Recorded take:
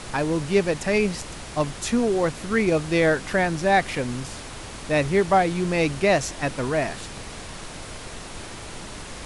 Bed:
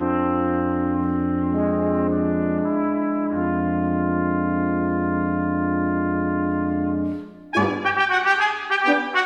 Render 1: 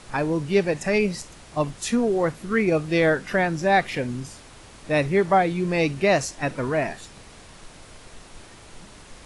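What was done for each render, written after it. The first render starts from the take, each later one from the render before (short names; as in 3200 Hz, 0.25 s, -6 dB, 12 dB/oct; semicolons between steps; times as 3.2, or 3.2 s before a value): noise print and reduce 9 dB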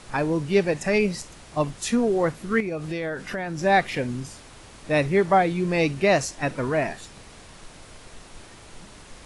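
2.6–3.59 compressor, threshold -26 dBFS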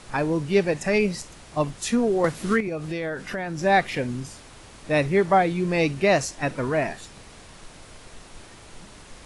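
2.24–2.68 three-band squash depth 100%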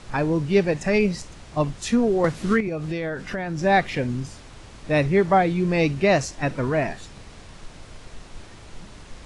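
LPF 7700 Hz 12 dB/oct; low shelf 180 Hz +6.5 dB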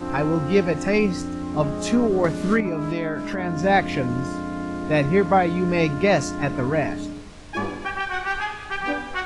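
add bed -7.5 dB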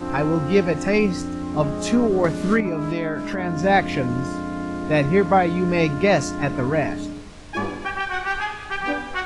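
gain +1 dB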